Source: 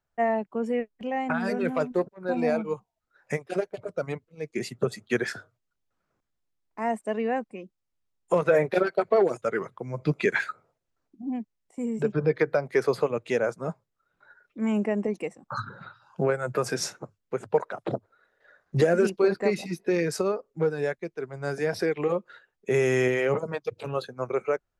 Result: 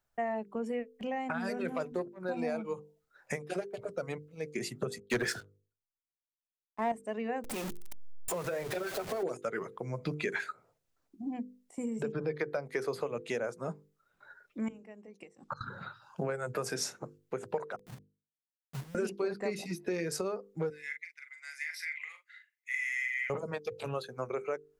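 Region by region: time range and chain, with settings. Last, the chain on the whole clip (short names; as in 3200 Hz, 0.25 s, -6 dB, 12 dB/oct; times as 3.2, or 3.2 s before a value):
4.98–6.92 sample leveller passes 2 + three-band expander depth 100%
7.44–9.23 zero-crossing step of -29.5 dBFS + compressor 2:1, threshold -32 dBFS
14.68–15.61 LPF 6100 Hz + flipped gate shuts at -23 dBFS, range -24 dB + high shelf 2500 Hz +8.5 dB
17.76–18.95 compressor 2.5:1, threshold -41 dBFS + inverse Chebyshev low-pass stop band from 1200 Hz, stop band 80 dB + companded quantiser 4-bit
20.7–23.3 ladder high-pass 2000 Hz, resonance 90% + high shelf 5300 Hz +6 dB + doubler 41 ms -7.5 dB
whole clip: high shelf 5200 Hz +6 dB; notches 50/100/150/200/250/300/350/400/450/500 Hz; compressor 2.5:1, threshold -35 dBFS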